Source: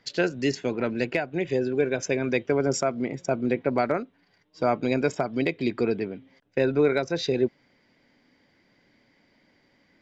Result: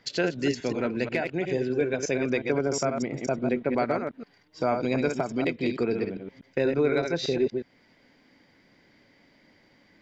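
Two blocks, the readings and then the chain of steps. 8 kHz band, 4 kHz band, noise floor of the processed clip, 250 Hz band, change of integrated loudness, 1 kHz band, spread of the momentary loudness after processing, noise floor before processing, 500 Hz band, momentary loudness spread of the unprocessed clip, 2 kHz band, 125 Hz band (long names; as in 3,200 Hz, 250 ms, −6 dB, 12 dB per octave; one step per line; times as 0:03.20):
can't be measured, −0.5 dB, −62 dBFS, −1.0 dB, −1.5 dB, −1.5 dB, 5 LU, −66 dBFS, −1.5 dB, 5 LU, −1.5 dB, −1.0 dB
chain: delay that plays each chunk backwards 121 ms, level −5.5 dB
in parallel at +2 dB: downward compressor, threshold −34 dBFS, peak gain reduction 16.5 dB
on the sum: level −4.5 dB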